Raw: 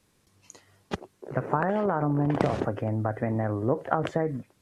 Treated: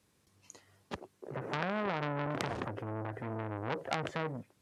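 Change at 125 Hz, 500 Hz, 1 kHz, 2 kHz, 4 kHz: −11.0, −10.0, −8.0, −2.5, +2.0 decibels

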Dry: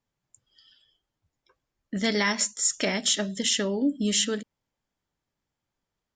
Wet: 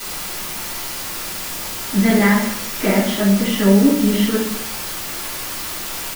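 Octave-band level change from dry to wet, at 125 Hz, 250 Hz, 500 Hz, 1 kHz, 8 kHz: +16.5, +14.0, +10.5, +11.5, +3.0 decibels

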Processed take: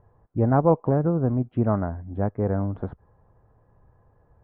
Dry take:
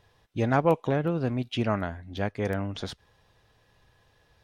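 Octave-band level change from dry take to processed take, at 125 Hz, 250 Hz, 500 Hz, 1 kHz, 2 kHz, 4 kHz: +6.0 dB, +5.0 dB, +3.5 dB, +2.0 dB, −8.0 dB, below −30 dB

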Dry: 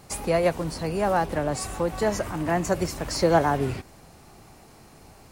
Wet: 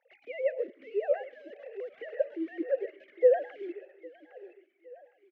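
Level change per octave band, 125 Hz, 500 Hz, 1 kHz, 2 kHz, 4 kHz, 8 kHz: below −40 dB, −3.5 dB, −18.5 dB, −13.0 dB, below −20 dB, below −40 dB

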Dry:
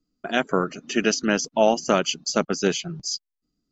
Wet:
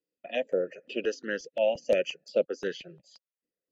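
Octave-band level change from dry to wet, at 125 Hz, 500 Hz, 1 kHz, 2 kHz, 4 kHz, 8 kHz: below −15 dB, −4.0 dB, −16.5 dB, −9.5 dB, −12.5 dB, can't be measured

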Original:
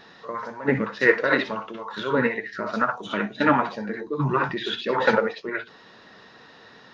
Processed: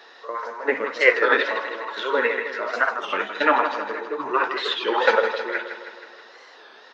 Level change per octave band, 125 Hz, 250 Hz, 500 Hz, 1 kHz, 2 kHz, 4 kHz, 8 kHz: below −25 dB, −7.5 dB, +2.0 dB, +3.0 dB, +3.5 dB, +4.5 dB, can't be measured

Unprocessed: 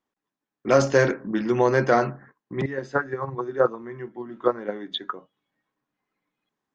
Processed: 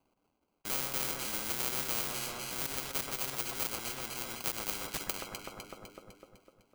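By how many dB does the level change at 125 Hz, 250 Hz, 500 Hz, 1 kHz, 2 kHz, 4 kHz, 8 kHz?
−17.5 dB, −18.0 dB, −22.0 dB, −13.5 dB, −10.5 dB, +0.5 dB, can't be measured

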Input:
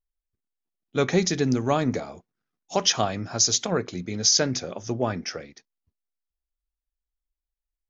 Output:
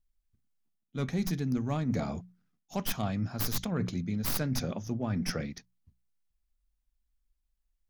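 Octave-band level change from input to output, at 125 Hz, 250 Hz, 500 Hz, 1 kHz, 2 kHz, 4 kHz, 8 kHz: −1.5 dB, −4.0 dB, −12.0 dB, −11.0 dB, −9.0 dB, −15.5 dB, can't be measured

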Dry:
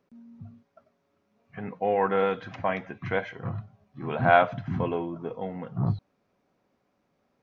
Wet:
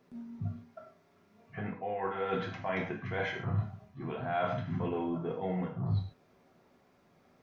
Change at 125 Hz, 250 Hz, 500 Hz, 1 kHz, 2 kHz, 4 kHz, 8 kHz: −2.5 dB, −3.5 dB, −8.5 dB, −10.0 dB, −8.5 dB, −4.5 dB, can't be measured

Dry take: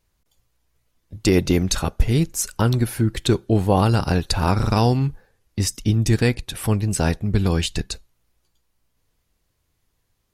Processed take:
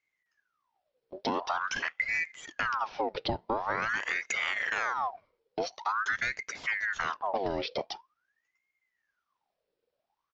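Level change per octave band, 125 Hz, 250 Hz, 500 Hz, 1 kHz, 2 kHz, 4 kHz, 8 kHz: −31.0, −21.5, −12.0, −4.0, +3.0, −10.5, −17.5 decibels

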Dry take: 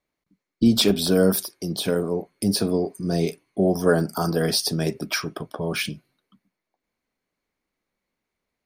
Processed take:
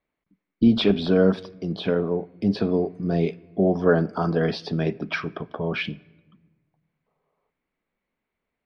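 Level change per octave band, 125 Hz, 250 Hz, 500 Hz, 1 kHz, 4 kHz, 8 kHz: 0.0 dB, +0.5 dB, +0.5 dB, 0.0 dB, −7.0 dB, below −25 dB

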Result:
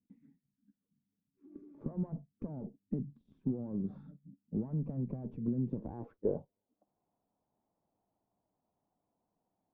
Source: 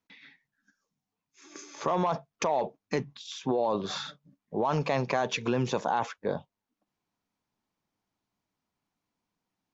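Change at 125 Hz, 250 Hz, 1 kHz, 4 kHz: −2.5 dB, −2.5 dB, −28.0 dB, below −40 dB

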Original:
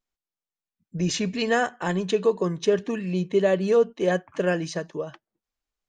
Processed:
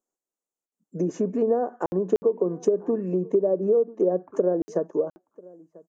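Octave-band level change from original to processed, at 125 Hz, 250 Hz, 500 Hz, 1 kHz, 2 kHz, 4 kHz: −5.0 dB, −0.5 dB, +1.0 dB, −4.5 dB, below −20 dB, below −20 dB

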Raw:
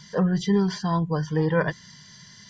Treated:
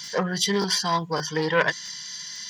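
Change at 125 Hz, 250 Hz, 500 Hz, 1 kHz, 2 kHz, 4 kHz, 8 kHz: −7.5 dB, −6.0 dB, +0.5 dB, +4.5 dB, +7.0 dB, +12.5 dB, can't be measured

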